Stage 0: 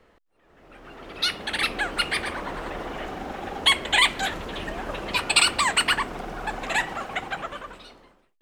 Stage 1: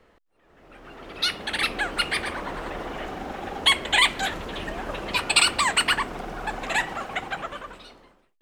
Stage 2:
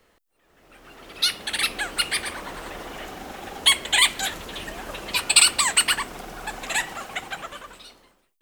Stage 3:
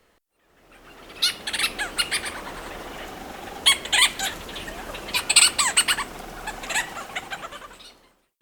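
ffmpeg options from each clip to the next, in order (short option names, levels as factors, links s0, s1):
-af anull
-af "crystalizer=i=3.5:c=0,volume=0.596"
-ar 48000 -c:a libopus -b:a 256k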